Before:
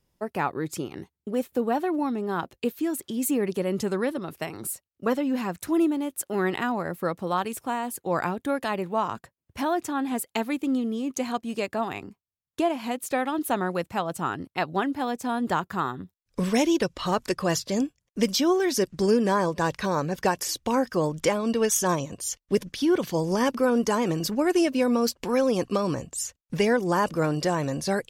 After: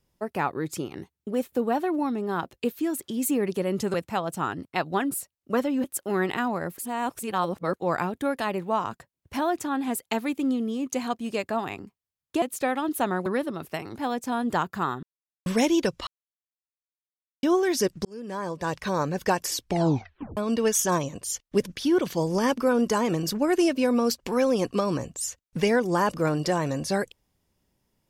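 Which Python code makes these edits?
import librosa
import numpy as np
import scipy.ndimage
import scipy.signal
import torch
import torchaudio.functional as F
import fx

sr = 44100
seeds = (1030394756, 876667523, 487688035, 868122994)

y = fx.edit(x, sr, fx.swap(start_s=3.94, length_s=0.7, other_s=13.76, other_length_s=1.17),
    fx.cut(start_s=5.37, length_s=0.71),
    fx.reverse_span(start_s=7.02, length_s=0.96),
    fx.cut(start_s=12.66, length_s=0.26),
    fx.silence(start_s=16.0, length_s=0.43),
    fx.silence(start_s=17.04, length_s=1.36),
    fx.fade_in_span(start_s=19.02, length_s=0.96),
    fx.tape_stop(start_s=20.53, length_s=0.81), tone=tone)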